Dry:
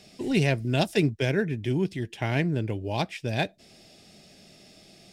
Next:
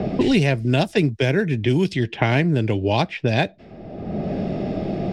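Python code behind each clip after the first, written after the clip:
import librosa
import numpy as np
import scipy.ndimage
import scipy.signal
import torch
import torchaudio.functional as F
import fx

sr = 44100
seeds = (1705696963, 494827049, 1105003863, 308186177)

y = fx.high_shelf(x, sr, hz=6800.0, db=-7.0)
y = fx.env_lowpass(y, sr, base_hz=690.0, full_db=-21.5)
y = fx.band_squash(y, sr, depth_pct=100)
y = y * 10.0 ** (6.5 / 20.0)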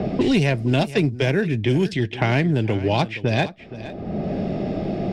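y = 10.0 ** (-8.0 / 20.0) * np.tanh(x / 10.0 ** (-8.0 / 20.0))
y = y + 10.0 ** (-15.5 / 20.0) * np.pad(y, (int(470 * sr / 1000.0), 0))[:len(y)]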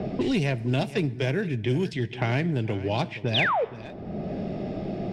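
y = fx.spec_paint(x, sr, seeds[0], shape='fall', start_s=3.34, length_s=0.31, low_hz=410.0, high_hz=4000.0, level_db=-17.0)
y = fx.rev_fdn(y, sr, rt60_s=1.2, lf_ratio=1.0, hf_ratio=0.75, size_ms=47.0, drr_db=17.0)
y = y * 10.0 ** (-6.5 / 20.0)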